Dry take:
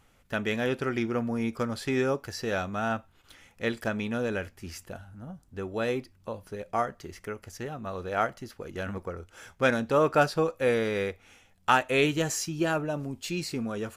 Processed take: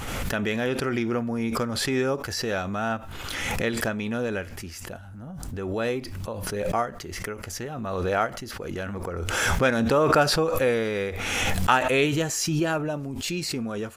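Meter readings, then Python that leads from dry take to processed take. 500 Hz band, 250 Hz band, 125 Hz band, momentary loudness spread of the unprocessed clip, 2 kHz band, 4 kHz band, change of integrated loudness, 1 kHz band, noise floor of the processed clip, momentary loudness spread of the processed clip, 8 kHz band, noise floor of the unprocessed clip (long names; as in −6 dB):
+3.0 dB, +3.5 dB, +5.0 dB, 16 LU, +4.0 dB, +7.5 dB, +3.5 dB, +3.0 dB, −40 dBFS, 13 LU, +7.5 dB, −63 dBFS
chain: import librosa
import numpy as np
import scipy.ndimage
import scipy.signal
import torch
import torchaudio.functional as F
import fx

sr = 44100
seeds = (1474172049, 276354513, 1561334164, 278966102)

y = fx.pre_swell(x, sr, db_per_s=26.0)
y = F.gain(torch.from_numpy(y), 1.5).numpy()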